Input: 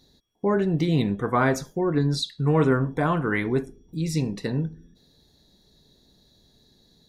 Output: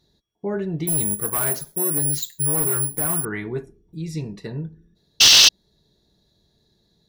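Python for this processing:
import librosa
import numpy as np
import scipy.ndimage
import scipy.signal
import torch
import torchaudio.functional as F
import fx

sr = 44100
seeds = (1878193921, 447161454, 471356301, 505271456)

y = fx.high_shelf(x, sr, hz=5600.0, db=-4.0)
y = fx.notch_comb(y, sr, f0_hz=260.0)
y = fx.resample_bad(y, sr, factor=4, down='none', up='zero_stuff', at=(0.87, 3.25))
y = fx.spec_paint(y, sr, seeds[0], shape='noise', start_s=5.2, length_s=0.29, low_hz=2600.0, high_hz=6400.0, level_db=-6.0)
y = fx.slew_limit(y, sr, full_power_hz=2400.0)
y = y * librosa.db_to_amplitude(-3.0)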